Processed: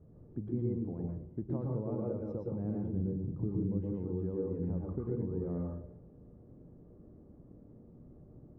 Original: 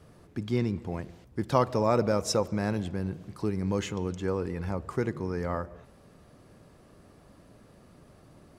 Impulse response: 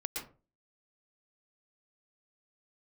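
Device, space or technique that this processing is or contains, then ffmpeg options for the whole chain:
television next door: -filter_complex "[0:a]asettb=1/sr,asplit=3[s0][s1][s2];[s0]atrim=end=2.944[s3];[s1]atrim=start=2.94:end=3.81,asetpts=PTS-STARTPTS,afade=t=in:d=0.004:c=qsin,afade=t=out:st=0.866:d=0.004:c=qsin,lowshelf=f=380:g=8[s4];[s2]atrim=start=3.806[s5];[s3][s4]acrossfade=d=0.004:c1=hsin:c2=qsin[s6];[s6][s5]acrossfade=d=0.004:c1=qsin:c2=hsin,acompressor=threshold=0.0282:ratio=4,lowpass=390[s7];[1:a]atrim=start_sample=2205[s8];[s7][s8]afir=irnorm=-1:irlink=0"

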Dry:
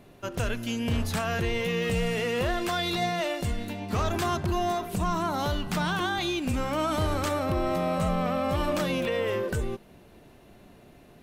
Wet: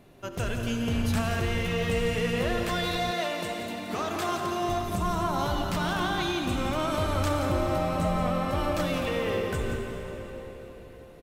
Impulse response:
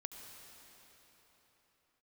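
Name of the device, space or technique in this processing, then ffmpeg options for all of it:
cave: -filter_complex "[0:a]aecho=1:1:174:0.335[s0];[1:a]atrim=start_sample=2205[s1];[s0][s1]afir=irnorm=-1:irlink=0,asettb=1/sr,asplit=3[s2][s3][s4];[s2]atrim=end=3.114[s5];[s3]atrim=start=3.11:end=4.69,asetpts=PTS-STARTPTS,afade=t=in:d=0.004:c=qsin,afade=t=out:st=1.576:d=0.004:c=qsin,highpass=230[s6];[s4]atrim=start=4.686[s7];[s5][s6]acrossfade=d=0.004:c1=hsin:c2=qsin[s8];[s8][s7]acrossfade=d=0.004:c1=qsin:c2=hsin,volume=1.33"

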